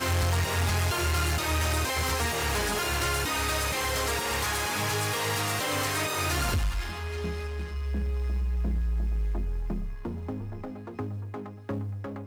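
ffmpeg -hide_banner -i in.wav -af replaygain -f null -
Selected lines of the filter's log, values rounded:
track_gain = +12.4 dB
track_peak = 0.060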